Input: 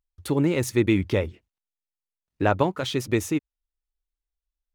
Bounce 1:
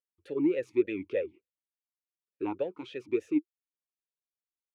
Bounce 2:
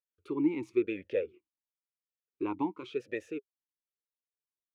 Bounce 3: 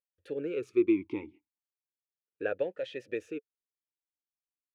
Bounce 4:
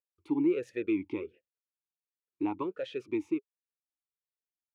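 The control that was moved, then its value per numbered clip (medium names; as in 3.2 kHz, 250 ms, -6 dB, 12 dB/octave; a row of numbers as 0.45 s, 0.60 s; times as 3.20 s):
talking filter, rate: 3.4 Hz, 0.95 Hz, 0.35 Hz, 1.4 Hz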